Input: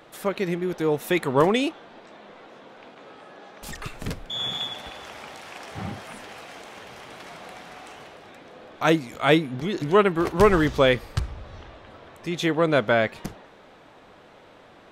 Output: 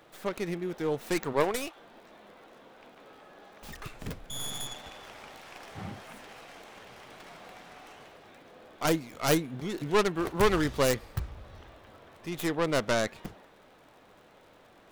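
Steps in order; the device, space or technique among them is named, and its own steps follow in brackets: 1.32–1.75 s: high-pass 290 Hz -> 690 Hz 12 dB/octave; record under a worn stylus (tracing distortion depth 0.5 ms; crackle 77 per s -44 dBFS; pink noise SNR 40 dB); trim -7 dB

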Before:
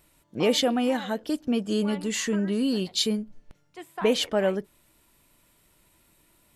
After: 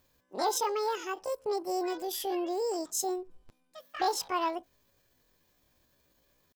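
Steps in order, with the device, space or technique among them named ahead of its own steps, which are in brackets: chipmunk voice (pitch shift +9.5 st); trim -6.5 dB

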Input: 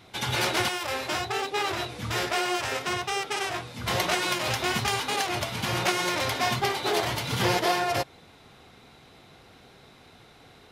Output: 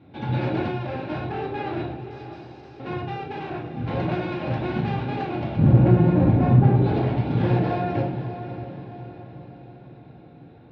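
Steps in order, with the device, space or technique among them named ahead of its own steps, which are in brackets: 1.94–2.80 s: inverse Chebyshev high-pass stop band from 1.1 kHz, stop band 70 dB; 5.57–6.82 s: tilt EQ -4.5 dB/octave; echo that smears into a reverb 588 ms, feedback 47%, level -11 dB; guitar amplifier (valve stage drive 19 dB, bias 0.6; tone controls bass +14 dB, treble -12 dB; cabinet simulation 110–3500 Hz, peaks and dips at 310 Hz +7 dB, 450 Hz +4 dB, 710 Hz +3 dB, 1.2 kHz -9 dB, 2 kHz -8 dB, 3.1 kHz -8 dB); simulated room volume 750 m³, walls furnished, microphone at 2.3 m; trim -2 dB

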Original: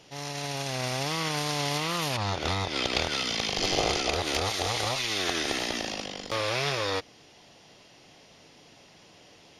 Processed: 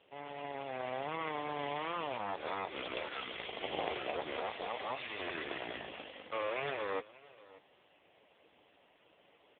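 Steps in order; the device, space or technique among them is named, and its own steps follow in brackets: satellite phone (band-pass 320–3100 Hz; delay 583 ms -20.5 dB; trim -4 dB; AMR-NB 5.15 kbps 8 kHz)

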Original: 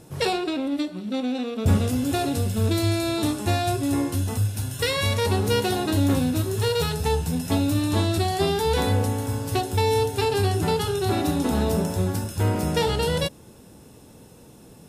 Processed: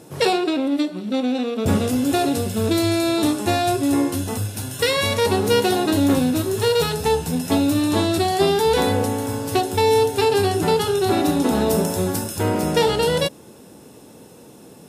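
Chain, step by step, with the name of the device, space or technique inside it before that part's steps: 11.70–12.39 s: treble shelf 5.9 kHz +6.5 dB; filter by subtraction (in parallel: low-pass 330 Hz 12 dB/octave + polarity flip); on the sum: trim +4 dB

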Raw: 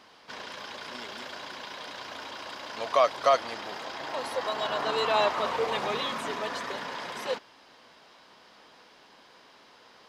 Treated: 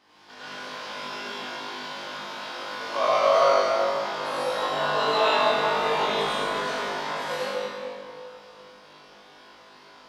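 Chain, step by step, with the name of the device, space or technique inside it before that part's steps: tunnel (flutter echo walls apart 3.4 m, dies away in 0.6 s; reverberation RT60 2.6 s, pre-delay 75 ms, DRR -10 dB); trim -9 dB

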